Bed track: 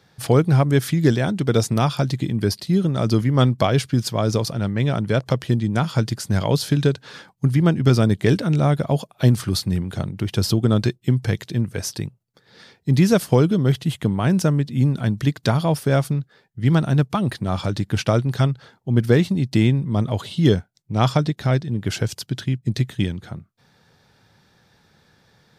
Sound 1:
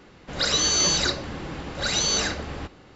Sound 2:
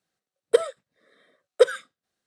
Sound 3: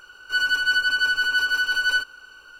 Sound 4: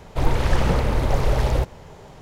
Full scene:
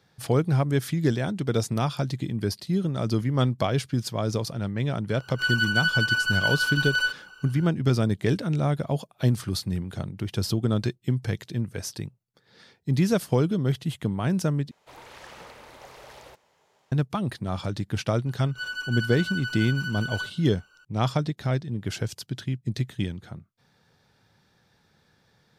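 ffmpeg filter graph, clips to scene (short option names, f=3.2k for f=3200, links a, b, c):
-filter_complex "[3:a]asplit=2[a][b];[0:a]volume=-6.5dB[c];[4:a]highpass=f=1.2k:p=1[d];[b]equalizer=f=6.9k:t=o:w=0.21:g=6[e];[c]asplit=2[f][g];[f]atrim=end=14.714[h];[d]atrim=end=2.21,asetpts=PTS-STARTPTS,volume=-14.5dB[i];[g]atrim=start=16.916[j];[a]atrim=end=2.59,asetpts=PTS-STARTPTS,volume=-3dB,afade=t=in:d=0.004:c=hsin,afade=t=out:st=2.586:d=0.004:c=hsin,adelay=224469S[k];[e]atrim=end=2.59,asetpts=PTS-STARTPTS,volume=-11.5dB,afade=t=in:d=0.004:c=hsin,afade=t=out:st=2.586:d=0.004:c=hsin,adelay=18260[l];[h][i]acrossfade=d=0.004:c1=hsin:c2=hsin[m];[m][j]acrossfade=d=0.004:c1=hsin:c2=hsin[n];[n][k][l]amix=inputs=3:normalize=0"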